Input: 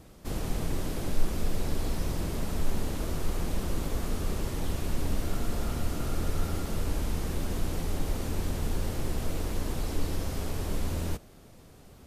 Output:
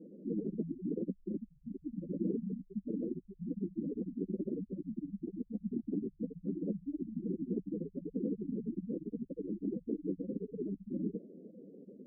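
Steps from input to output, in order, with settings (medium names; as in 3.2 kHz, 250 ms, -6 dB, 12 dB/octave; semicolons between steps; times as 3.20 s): spectral gate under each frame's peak -15 dB strong; elliptic band-pass 190–510 Hz, stop band 40 dB; trim +7 dB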